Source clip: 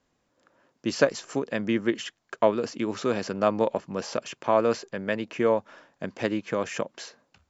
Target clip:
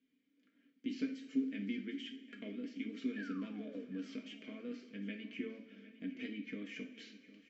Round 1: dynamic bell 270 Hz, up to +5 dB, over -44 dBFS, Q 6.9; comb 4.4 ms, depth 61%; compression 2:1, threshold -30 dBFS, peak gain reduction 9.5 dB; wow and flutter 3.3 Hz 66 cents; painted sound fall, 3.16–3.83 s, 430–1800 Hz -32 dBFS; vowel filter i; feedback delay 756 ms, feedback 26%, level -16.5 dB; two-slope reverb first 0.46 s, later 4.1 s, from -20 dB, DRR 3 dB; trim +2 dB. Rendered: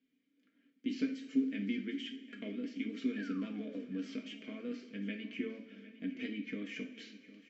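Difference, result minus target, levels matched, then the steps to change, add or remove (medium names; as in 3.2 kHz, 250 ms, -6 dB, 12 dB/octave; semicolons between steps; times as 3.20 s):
compression: peak gain reduction -3.5 dB
change: compression 2:1, threshold -37 dBFS, peak gain reduction 13 dB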